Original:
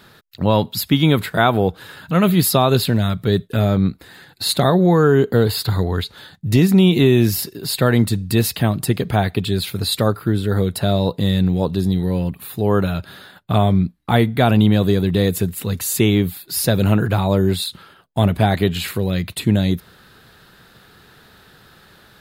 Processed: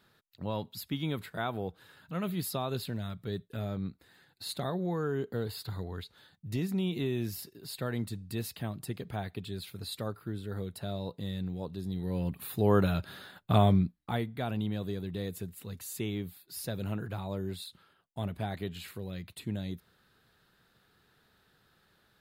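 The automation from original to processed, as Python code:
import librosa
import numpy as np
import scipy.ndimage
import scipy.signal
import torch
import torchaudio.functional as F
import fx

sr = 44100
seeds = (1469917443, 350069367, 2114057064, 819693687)

y = fx.gain(x, sr, db=fx.line((11.83, -19.0), (12.42, -7.5), (13.7, -7.5), (14.28, -19.5)))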